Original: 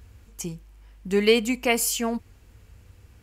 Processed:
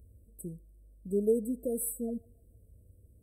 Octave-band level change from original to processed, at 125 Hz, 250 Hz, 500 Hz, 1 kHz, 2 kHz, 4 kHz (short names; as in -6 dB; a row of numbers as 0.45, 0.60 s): -7.5 dB, -7.5 dB, -7.5 dB, under -25 dB, under -40 dB, under -40 dB